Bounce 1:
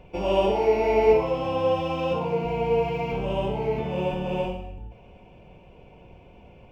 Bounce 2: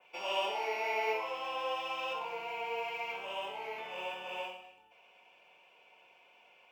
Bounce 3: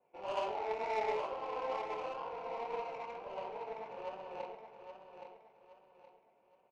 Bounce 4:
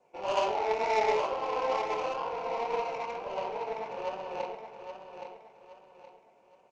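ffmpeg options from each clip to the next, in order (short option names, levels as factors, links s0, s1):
-af "highpass=1300,adynamicequalizer=threshold=0.002:dfrequency=4600:dqfactor=1.1:tfrequency=4600:tqfactor=1.1:attack=5:release=100:ratio=0.375:range=2:mode=cutabove:tftype=bell"
-filter_complex "[0:a]flanger=delay=18:depth=7.6:speed=2.1,adynamicsmooth=sensitivity=3:basefreq=590,asplit=2[s0][s1];[s1]aecho=0:1:820|1640|2460|3280:0.398|0.135|0.046|0.0156[s2];[s0][s2]amix=inputs=2:normalize=0,volume=1.33"
-af "lowpass=f=6500:t=q:w=2.1,volume=2.51"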